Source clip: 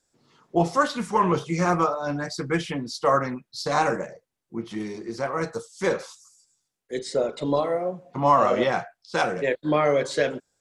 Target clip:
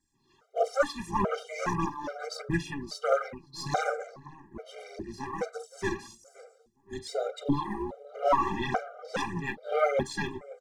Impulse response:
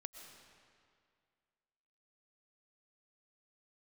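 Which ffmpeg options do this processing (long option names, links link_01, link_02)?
-filter_complex "[0:a]aeval=exprs='0.447*(cos(1*acos(clip(val(0)/0.447,-1,1)))-cos(1*PI/2))+0.02*(cos(4*acos(clip(val(0)/0.447,-1,1)))-cos(4*PI/2))':channel_layout=same,aphaser=in_gain=1:out_gain=1:delay=3:decay=0.66:speed=1.6:type=triangular,tremolo=f=290:d=0.75,asplit=2[link_01][link_02];[link_02]adelay=521,lowpass=frequency=1300:poles=1,volume=-18dB,asplit=2[link_03][link_04];[link_04]adelay=521,lowpass=frequency=1300:poles=1,volume=0.52,asplit=2[link_05][link_06];[link_06]adelay=521,lowpass=frequency=1300:poles=1,volume=0.52,asplit=2[link_07][link_08];[link_08]adelay=521,lowpass=frequency=1300:poles=1,volume=0.52[link_09];[link_01][link_03][link_05][link_07][link_09]amix=inputs=5:normalize=0,afftfilt=real='re*gt(sin(2*PI*1.2*pts/sr)*(1-2*mod(floor(b*sr/1024/400),2)),0)':imag='im*gt(sin(2*PI*1.2*pts/sr)*(1-2*mod(floor(b*sr/1024/400),2)),0)':win_size=1024:overlap=0.75,volume=-2dB"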